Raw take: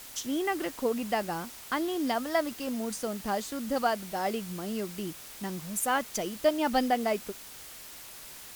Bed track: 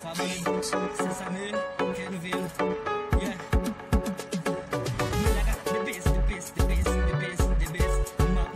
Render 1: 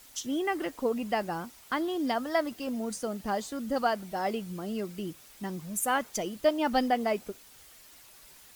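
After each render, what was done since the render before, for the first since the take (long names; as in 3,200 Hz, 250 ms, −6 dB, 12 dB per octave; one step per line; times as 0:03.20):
broadband denoise 9 dB, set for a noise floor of −46 dBFS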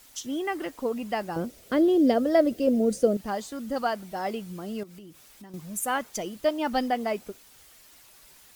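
0:01.36–0:03.17: low shelf with overshoot 700 Hz +8.5 dB, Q 3
0:04.83–0:05.54: downward compressor, threshold −43 dBFS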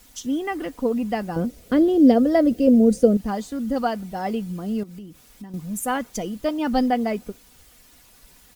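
low-shelf EQ 300 Hz +11.5 dB
comb filter 4.1 ms, depth 34%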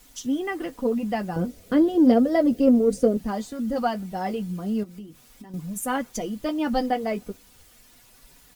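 flanger 0.35 Hz, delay 6.7 ms, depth 4.3 ms, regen −37%
in parallel at −10 dB: soft clipping −18 dBFS, distortion −13 dB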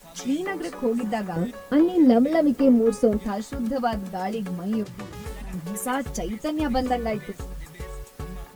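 mix in bed track −11.5 dB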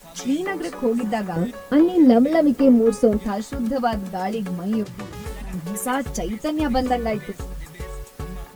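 level +3 dB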